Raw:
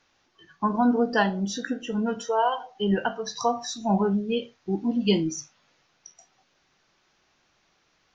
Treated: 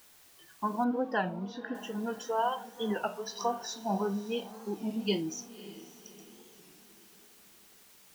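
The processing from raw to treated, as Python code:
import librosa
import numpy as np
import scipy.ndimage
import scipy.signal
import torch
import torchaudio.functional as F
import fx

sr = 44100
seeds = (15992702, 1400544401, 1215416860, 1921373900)

y = fx.highpass(x, sr, hz=240.0, slope=6)
y = fx.dmg_noise_colour(y, sr, seeds[0], colour='white', level_db=-53.0)
y = fx.air_absorb(y, sr, metres=280.0, at=(0.84, 1.75))
y = fx.echo_diffused(y, sr, ms=566, feedback_pct=47, wet_db=-16.0)
y = fx.record_warp(y, sr, rpm=33.33, depth_cents=160.0)
y = F.gain(torch.from_numpy(y), -6.0).numpy()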